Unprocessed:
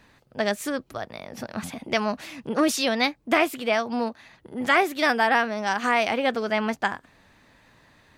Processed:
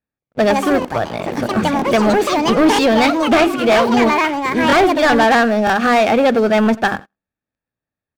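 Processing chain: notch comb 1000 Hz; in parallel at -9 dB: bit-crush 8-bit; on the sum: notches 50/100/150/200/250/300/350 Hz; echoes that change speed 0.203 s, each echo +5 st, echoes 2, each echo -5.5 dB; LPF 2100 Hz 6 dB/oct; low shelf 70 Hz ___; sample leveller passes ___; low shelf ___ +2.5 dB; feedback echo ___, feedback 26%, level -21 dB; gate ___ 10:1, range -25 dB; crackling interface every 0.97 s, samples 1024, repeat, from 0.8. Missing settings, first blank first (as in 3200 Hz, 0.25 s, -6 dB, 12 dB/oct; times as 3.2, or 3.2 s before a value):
+11.5 dB, 3, 470 Hz, 90 ms, -27 dBFS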